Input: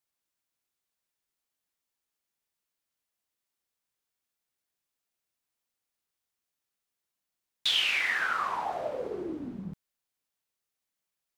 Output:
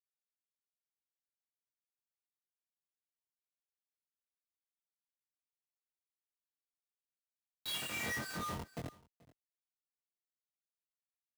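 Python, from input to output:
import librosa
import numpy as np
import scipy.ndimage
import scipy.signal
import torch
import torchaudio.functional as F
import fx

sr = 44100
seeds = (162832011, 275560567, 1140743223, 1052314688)

y = fx.fade_out_tail(x, sr, length_s=3.46)
y = fx.high_shelf(y, sr, hz=3400.0, db=11.0)
y = fx.stiff_resonator(y, sr, f0_hz=140.0, decay_s=0.77, stiffness=0.03)
y = fx.schmitt(y, sr, flips_db=-44.5)
y = scipy.signal.sosfilt(scipy.signal.butter(2, 110.0, 'highpass', fs=sr, output='sos'), y)
y = fx.low_shelf(y, sr, hz=250.0, db=8.0)
y = fx.doubler(y, sr, ms=23.0, db=-2.5)
y = y + 10.0 ** (-22.0 / 20.0) * np.pad(y, (int(432 * sr / 1000.0), 0))[:len(y)]
y = fx.am_noise(y, sr, seeds[0], hz=5.7, depth_pct=65)
y = y * 10.0 ** (11.0 / 20.0)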